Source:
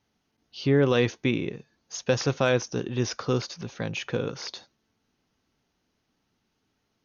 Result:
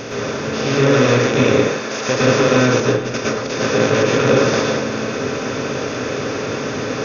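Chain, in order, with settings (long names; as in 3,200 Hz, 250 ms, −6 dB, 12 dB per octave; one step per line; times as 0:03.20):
compressor on every frequency bin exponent 0.2
0:01.52–0:02.09: high-pass filter 540 Hz 6 dB per octave
0:02.80–0:03.47: compressor whose output falls as the input rises −25 dBFS, ratio −0.5
dense smooth reverb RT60 0.55 s, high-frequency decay 0.5×, pre-delay 100 ms, DRR −6 dB
level −3 dB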